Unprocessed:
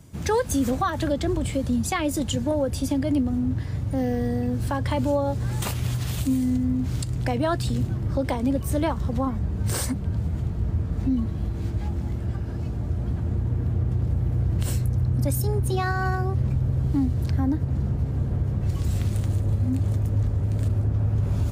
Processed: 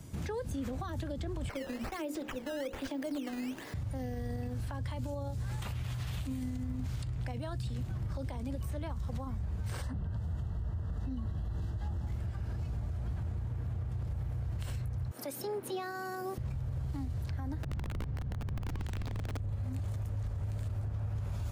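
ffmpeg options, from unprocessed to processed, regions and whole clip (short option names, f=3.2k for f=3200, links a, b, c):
-filter_complex "[0:a]asettb=1/sr,asplit=3[a][b][c];[a]atrim=end=1.494[d];[b]atrim=start=1.49:end=3.74,asetpts=PTS-STARTPTS,afade=t=in:d=0.004:c=qsin,afade=t=out:st=2.246:d=0.004:c=qsin,highpass=f=320:w=0.5412,highpass=f=320:w=1.3066,bandreject=f=60:t=h:w=6,bandreject=f=120:t=h:w=6,bandreject=f=180:t=h:w=6,bandreject=f=240:t=h:w=6,bandreject=f=300:t=h:w=6,bandreject=f=360:t=h:w=6,bandreject=f=420:t=h:w=6,bandreject=f=480:t=h:w=6,bandreject=f=540:t=h:w=6,acrusher=samples=11:mix=1:aa=0.000001:lfo=1:lforange=17.6:lforate=1.2[e];[c]atrim=start=3.736[f];[d][e]acrossfade=d=0.004:c1=hsin:c2=qsin[g];[g][f]acrossfade=d=0.004:c1=qsin:c2=hsin,asettb=1/sr,asplit=3[h][i][j];[h]atrim=end=9.824[k];[i]atrim=start=9.82:end=12.07,asetpts=PTS-STARTPTS,afade=t=in:d=0.004:c=qsin,afade=t=out:st=2.246:d=0.004:c=qsin,asuperstop=centerf=2300:order=12:qfactor=4,highshelf=f=3.7k:g=-6.5[l];[j]atrim=start=12.066[m];[k][l]acrossfade=d=0.004:c1=hsin:c2=qsin[n];[n][m]acrossfade=d=0.004:c1=qsin:c2=hsin,asettb=1/sr,asplit=3[o][p][q];[o]atrim=end=15.114[r];[p]atrim=start=15.11:end=16.38,asetpts=PTS-STARTPTS,afade=t=in:d=0.004:c=qsin,afade=t=out:st=1.266:d=0.004:c=qsin,highpass=f=310:w=0.5412,highpass=f=310:w=1.3066,aemphasis=mode=production:type=50fm[s];[q]atrim=start=16.376[t];[r][s]acrossfade=d=0.004:c1=hsin:c2=qsin[u];[u][t]acrossfade=d=0.004:c1=qsin:c2=hsin,asettb=1/sr,asplit=3[v][w][x];[v]atrim=end=17.634[y];[w]atrim=start=17.63:end=19.37,asetpts=PTS-STARTPTS,afade=t=in:d=0.004:c=qsin,afade=t=out:st=1.736:d=0.004:c=qsin,lowpass=6.6k,aeval=exprs='(mod(7.5*val(0)+1,2)-1)/7.5':c=same[z];[x]atrim=start=19.366[aa];[y][z]acrossfade=d=0.004:c1=hsin:c2=qsin[ab];[ab][aa]acrossfade=d=0.004:c1=qsin:c2=hsin,asubboost=boost=3:cutoff=160,acrossover=split=490|3900[ac][ad][ae];[ac]acompressor=threshold=-28dB:ratio=4[af];[ad]acompressor=threshold=-37dB:ratio=4[ag];[ae]acompressor=threshold=-50dB:ratio=4[ah];[af][ag][ah]amix=inputs=3:normalize=0,alimiter=level_in=5.5dB:limit=-24dB:level=0:latency=1:release=134,volume=-5.5dB"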